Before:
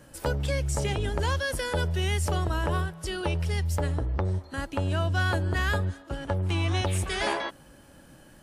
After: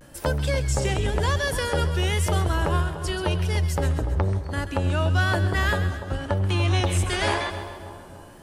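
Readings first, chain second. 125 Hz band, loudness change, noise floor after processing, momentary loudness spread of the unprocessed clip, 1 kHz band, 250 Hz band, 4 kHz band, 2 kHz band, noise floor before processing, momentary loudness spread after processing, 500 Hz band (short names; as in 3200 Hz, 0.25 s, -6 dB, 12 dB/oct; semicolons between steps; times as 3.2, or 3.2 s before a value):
+4.5 dB, +4.0 dB, -44 dBFS, 5 LU, +4.0 dB, +4.0 dB, +4.0 dB, +4.0 dB, -53 dBFS, 6 LU, +4.0 dB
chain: vibrato 0.96 Hz 82 cents; split-band echo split 1200 Hz, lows 0.292 s, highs 0.133 s, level -10.5 dB; gain +3.5 dB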